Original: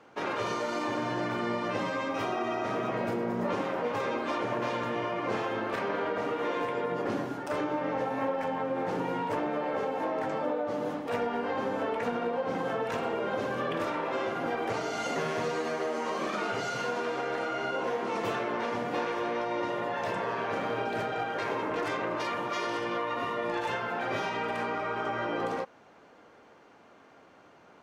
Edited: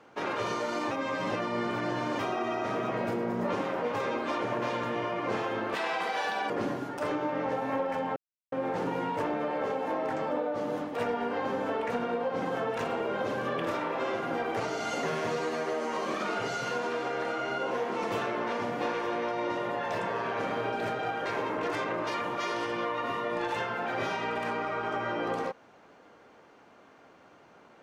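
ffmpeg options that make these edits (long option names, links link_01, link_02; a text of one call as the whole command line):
ffmpeg -i in.wav -filter_complex "[0:a]asplit=6[link_01][link_02][link_03][link_04][link_05][link_06];[link_01]atrim=end=0.912[link_07];[link_02]atrim=start=0.908:end=2.192,asetpts=PTS-STARTPTS,areverse[link_08];[link_03]atrim=start=2.188:end=5.754[link_09];[link_04]atrim=start=5.75:end=6.99,asetpts=PTS-STARTPTS,asetrate=72765,aresample=44100[link_10];[link_05]atrim=start=6.986:end=8.65,asetpts=PTS-STARTPTS,afade=type=out:start_time=1.66:duration=0.004:curve=hsin,apad=pad_dur=0.36[link_11];[link_06]atrim=start=8.65,asetpts=PTS-STARTPTS,afade=type=in:duration=0.004:curve=hsin[link_12];[link_07][link_08]acrossfade=duration=0.004:curve1=hsin:curve2=hsin[link_13];[link_13][link_09]acrossfade=duration=0.004:curve1=hsin:curve2=hsin[link_14];[link_14][link_10]acrossfade=duration=0.004:curve1=hsin:curve2=hsin[link_15];[link_11][link_12]concat=n=2:v=0:a=1[link_16];[link_15][link_16]acrossfade=duration=0.004:curve1=hsin:curve2=hsin" out.wav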